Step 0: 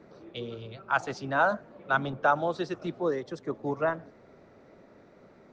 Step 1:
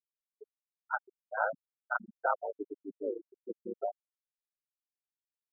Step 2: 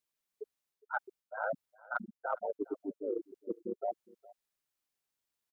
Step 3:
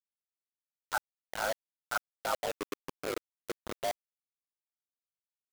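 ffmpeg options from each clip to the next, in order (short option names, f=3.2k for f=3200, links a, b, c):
-af "aeval=exprs='val(0)*sin(2*PI*53*n/s)':c=same,afftfilt=real='re*gte(hypot(re,im),0.141)':imag='im*gte(hypot(re,im),0.141)':win_size=1024:overlap=0.75,volume=-3dB"
-af "areverse,acompressor=threshold=-40dB:ratio=10,areverse,aecho=1:1:411:0.0794,volume=8dB"
-filter_complex "[0:a]acrossover=split=140|460|1300[a][b][c][d];[b]acompressor=threshold=-48dB:ratio=12[e];[a][e][c][d]amix=inputs=4:normalize=0,acrusher=bits=5:mix=0:aa=0.000001,volume=2.5dB"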